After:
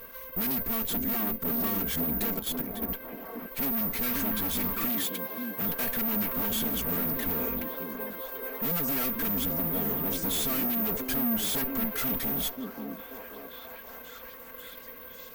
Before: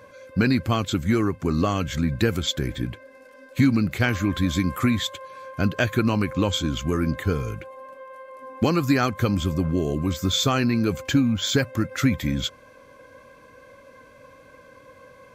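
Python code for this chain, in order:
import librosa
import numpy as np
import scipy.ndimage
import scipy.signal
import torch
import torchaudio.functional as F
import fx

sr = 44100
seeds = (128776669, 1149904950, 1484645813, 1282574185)

y = fx.lower_of_two(x, sr, delay_ms=4.4)
y = (np.kron(scipy.signal.resample_poly(y, 1, 3), np.eye(3)[0]) * 3)[:len(y)]
y = fx.level_steps(y, sr, step_db=13, at=(2.34, 2.89))
y = np.clip(10.0 ** (23.0 / 20.0) * y, -1.0, 1.0) / 10.0 ** (23.0 / 20.0)
y = fx.highpass(y, sr, hz=130.0, slope=12, at=(4.89, 5.62))
y = fx.echo_stepped(y, sr, ms=534, hz=280.0, octaves=0.7, feedback_pct=70, wet_db=-1.0)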